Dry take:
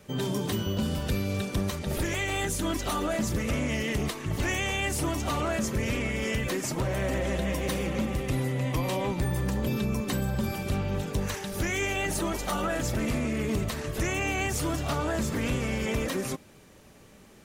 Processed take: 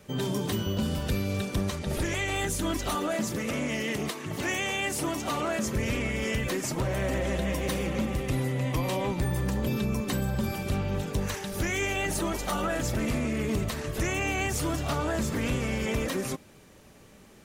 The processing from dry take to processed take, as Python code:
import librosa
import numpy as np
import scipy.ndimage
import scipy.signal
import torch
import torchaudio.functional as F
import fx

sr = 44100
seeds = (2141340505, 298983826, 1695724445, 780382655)

y = fx.lowpass(x, sr, hz=12000.0, slope=12, at=(1.64, 2.36))
y = fx.highpass(y, sr, hz=160.0, slope=12, at=(2.95, 5.66))